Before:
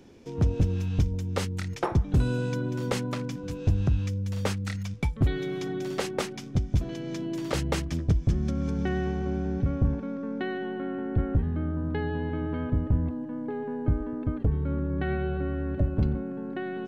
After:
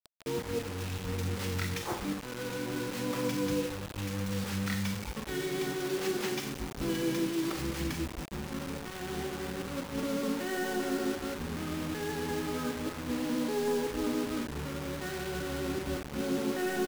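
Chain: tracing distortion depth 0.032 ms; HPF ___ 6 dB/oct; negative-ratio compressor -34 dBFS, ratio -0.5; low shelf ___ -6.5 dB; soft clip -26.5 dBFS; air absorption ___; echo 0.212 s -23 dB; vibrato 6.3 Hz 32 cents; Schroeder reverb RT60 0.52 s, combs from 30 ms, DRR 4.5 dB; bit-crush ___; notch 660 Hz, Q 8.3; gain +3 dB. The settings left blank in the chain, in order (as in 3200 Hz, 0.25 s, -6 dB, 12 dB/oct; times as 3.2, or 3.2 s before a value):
120 Hz, 190 Hz, 75 m, 7-bit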